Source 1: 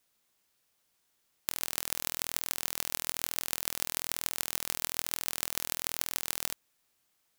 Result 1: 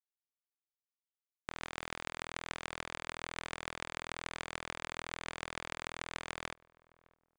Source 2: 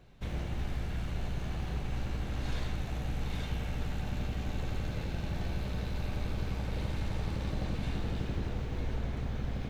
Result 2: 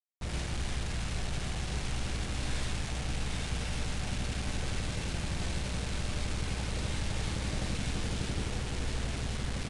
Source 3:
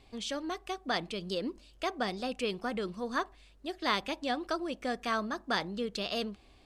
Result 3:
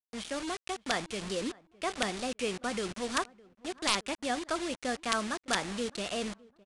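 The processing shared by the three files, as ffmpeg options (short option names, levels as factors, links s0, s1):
-filter_complex "[0:a]highshelf=f=5000:g=-4.5,acrossover=split=750|2500[s0][s1][s2];[s2]acompressor=threshold=0.00251:ratio=6[s3];[s0][s1][s3]amix=inputs=3:normalize=0,aeval=exprs='(mod(9.44*val(0)+1,2)-1)/9.44':c=same,acrusher=bits=6:mix=0:aa=0.000001,asplit=2[s4][s5];[s5]adelay=610,lowpass=f=1200:p=1,volume=0.075,asplit=2[s6][s7];[s7]adelay=610,lowpass=f=1200:p=1,volume=0.32[s8];[s6][s8]amix=inputs=2:normalize=0[s9];[s4][s9]amix=inputs=2:normalize=0,aresample=22050,aresample=44100,adynamicequalizer=threshold=0.00355:dfrequency=1800:dqfactor=0.7:tfrequency=1800:tqfactor=0.7:attack=5:release=100:ratio=0.375:range=3:mode=boostabove:tftype=highshelf"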